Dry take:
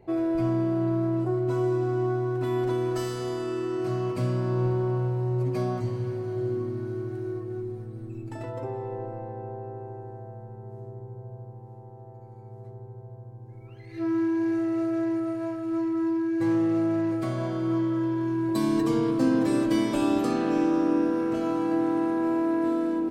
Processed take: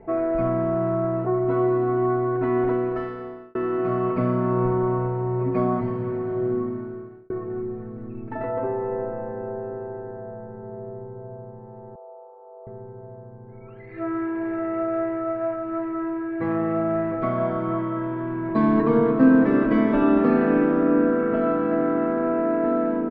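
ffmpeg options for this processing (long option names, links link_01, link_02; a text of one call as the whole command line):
ffmpeg -i in.wav -filter_complex "[0:a]asettb=1/sr,asplit=3[link_01][link_02][link_03];[link_01]atrim=end=11.954[link_04];[link_02]atrim=start=11.95:end=12.67,asetpts=PTS-STARTPTS,afade=type=in:duration=0.004:curve=qsin,afade=type=out:start_time=0.716:duration=0.004:curve=qsin,asuperpass=centerf=740:order=8:qfactor=1[link_05];[link_03]atrim=start=12.666[link_06];[link_04][link_05]acrossfade=duration=0.004:curve1=hsin:curve2=qsin[link_07];[link_07][link_06]acrossfade=duration=0.004:curve1=qsin:curve2=hsin,asplit=3[link_08][link_09][link_10];[link_08]atrim=end=3.55,asetpts=PTS-STARTPTS,afade=type=out:start_time=2.65:duration=0.9[link_11];[link_09]atrim=start=3.55:end=7.3,asetpts=PTS-STARTPTS,afade=type=in:duration=0.004:curve=hsin,afade=type=out:start_time=3:duration=0.75[link_12];[link_10]atrim=start=7.3,asetpts=PTS-STARTPTS,afade=type=in:duration=0.004:curve=hsin[link_13];[link_11][link_12][link_13]concat=n=3:v=0:a=1,lowpass=frequency=1800:width=0.5412,lowpass=frequency=1800:width=1.3066,aemphasis=mode=production:type=75fm,aecho=1:1:4.5:0.65,volume=7dB" out.wav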